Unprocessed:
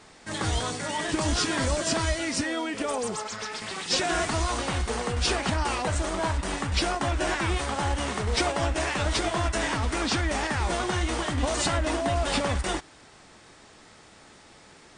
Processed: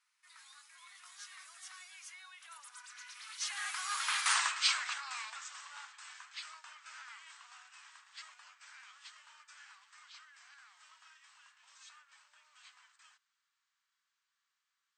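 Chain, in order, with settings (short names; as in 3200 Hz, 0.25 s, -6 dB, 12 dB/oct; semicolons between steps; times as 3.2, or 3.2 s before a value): Doppler pass-by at 4.33, 44 m/s, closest 5.1 m; steep high-pass 1100 Hz 36 dB/oct; gain +7 dB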